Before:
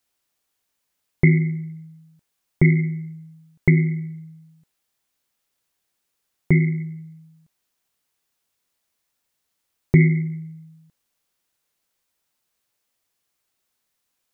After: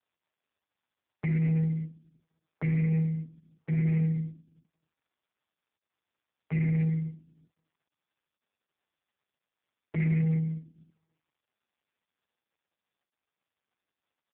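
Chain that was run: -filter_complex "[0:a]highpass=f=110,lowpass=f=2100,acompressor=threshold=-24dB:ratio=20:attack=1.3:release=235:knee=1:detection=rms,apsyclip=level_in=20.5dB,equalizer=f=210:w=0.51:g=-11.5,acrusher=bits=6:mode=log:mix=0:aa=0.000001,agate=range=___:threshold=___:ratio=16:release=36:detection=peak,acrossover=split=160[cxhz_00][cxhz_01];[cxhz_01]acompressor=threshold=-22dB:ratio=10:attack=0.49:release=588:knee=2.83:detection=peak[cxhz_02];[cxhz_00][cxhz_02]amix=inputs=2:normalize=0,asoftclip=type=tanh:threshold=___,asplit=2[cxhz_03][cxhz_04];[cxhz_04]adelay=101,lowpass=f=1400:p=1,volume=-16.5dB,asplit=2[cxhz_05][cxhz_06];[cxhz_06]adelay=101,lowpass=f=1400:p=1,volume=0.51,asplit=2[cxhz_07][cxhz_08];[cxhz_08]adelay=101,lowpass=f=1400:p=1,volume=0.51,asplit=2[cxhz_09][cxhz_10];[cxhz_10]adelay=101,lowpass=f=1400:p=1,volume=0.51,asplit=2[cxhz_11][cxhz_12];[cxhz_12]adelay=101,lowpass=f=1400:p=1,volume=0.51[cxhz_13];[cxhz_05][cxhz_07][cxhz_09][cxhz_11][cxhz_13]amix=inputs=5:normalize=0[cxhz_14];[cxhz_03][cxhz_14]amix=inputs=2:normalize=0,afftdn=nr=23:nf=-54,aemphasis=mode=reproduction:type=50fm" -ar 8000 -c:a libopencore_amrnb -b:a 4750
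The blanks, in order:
-8dB, -34dB, -23dB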